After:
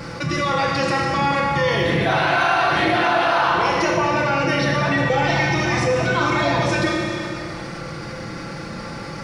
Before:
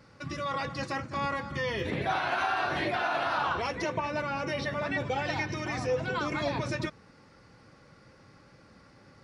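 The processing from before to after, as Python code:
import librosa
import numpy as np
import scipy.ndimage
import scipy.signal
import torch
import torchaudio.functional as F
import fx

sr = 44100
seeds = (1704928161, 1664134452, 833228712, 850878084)

y = x + 0.43 * np.pad(x, (int(5.9 * sr / 1000.0), 0))[:len(x)]
y = fx.rev_schroeder(y, sr, rt60_s=1.6, comb_ms=25, drr_db=0.0)
y = fx.env_flatten(y, sr, amount_pct=50)
y = F.gain(torch.from_numpy(y), 7.0).numpy()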